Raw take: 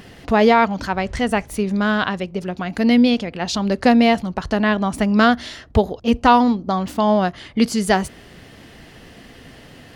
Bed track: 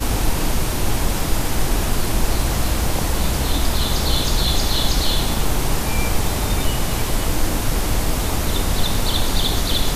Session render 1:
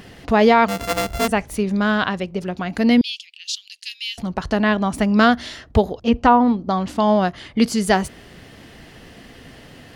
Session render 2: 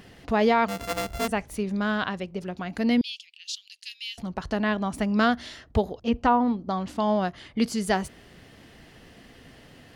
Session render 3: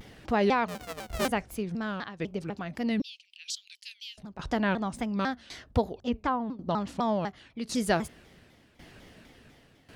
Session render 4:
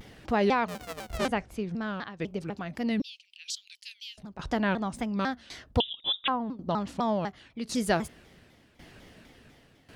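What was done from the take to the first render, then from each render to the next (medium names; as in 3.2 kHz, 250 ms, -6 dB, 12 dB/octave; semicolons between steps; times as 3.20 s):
0.68–1.28 s: sorted samples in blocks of 64 samples; 3.01–4.18 s: elliptic high-pass 2.8 kHz, stop band 80 dB; 6.00–6.99 s: low-pass that closes with the level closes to 1.3 kHz, closed at -8 dBFS
trim -7.5 dB
tremolo saw down 0.91 Hz, depth 80%; vibrato with a chosen wave saw down 4 Hz, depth 250 cents
1.17–2.19 s: distance through air 54 m; 5.80–6.28 s: frequency inversion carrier 3.7 kHz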